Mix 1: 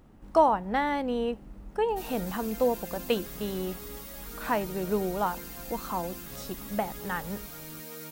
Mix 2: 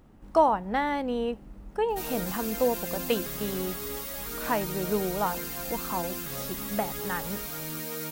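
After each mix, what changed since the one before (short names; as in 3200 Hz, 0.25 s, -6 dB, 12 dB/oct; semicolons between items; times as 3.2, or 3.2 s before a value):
background +7.0 dB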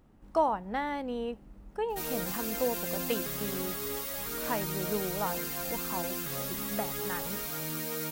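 speech -5.5 dB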